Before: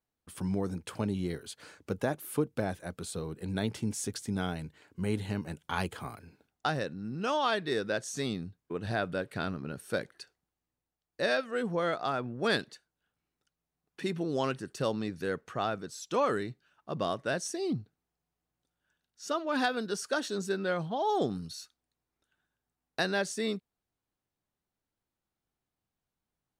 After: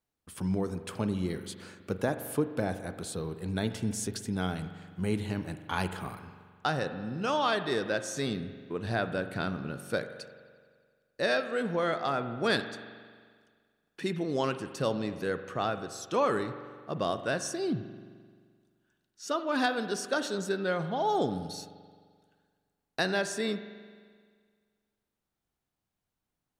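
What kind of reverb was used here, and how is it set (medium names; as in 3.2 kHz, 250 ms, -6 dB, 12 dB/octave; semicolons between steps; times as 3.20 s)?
spring tank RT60 1.8 s, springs 43 ms, chirp 45 ms, DRR 10 dB; trim +1 dB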